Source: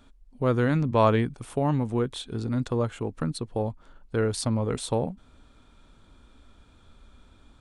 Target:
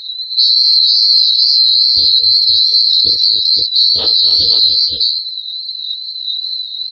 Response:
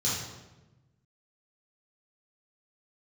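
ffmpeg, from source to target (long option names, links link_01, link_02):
-filter_complex "[0:a]afftfilt=real='real(if(lt(b,736),b+184*(1-2*mod(floor(b/184),2)),b),0)':imag='imag(if(lt(b,736),b+184*(1-2*mod(floor(b/184),2)),b),0)':win_size=2048:overlap=0.75,equalizer=frequency=80:width_type=o:width=0.64:gain=14,acompressor=threshold=-36dB:ratio=1.5,aresample=11025,aresample=44100,aexciter=amount=11.1:drive=2.8:freq=3400,equalizer=frequency=470:width_type=o:width=0.33:gain=11.5,acrossover=split=3600[link_01][link_02];[link_02]acompressor=threshold=-28dB:ratio=4:attack=1:release=60[link_03];[link_01][link_03]amix=inputs=2:normalize=0,afftdn=noise_reduction=28:noise_floor=-36,atempo=1.1,asplit=2[link_04][link_05];[link_05]aecho=0:1:63|246|292|522:0.422|0.2|0.398|0.631[link_06];[link_04][link_06]amix=inputs=2:normalize=0,flanger=delay=17.5:depth=7.7:speed=2.4,alimiter=level_in=16dB:limit=-1dB:release=50:level=0:latency=1,volume=-1dB"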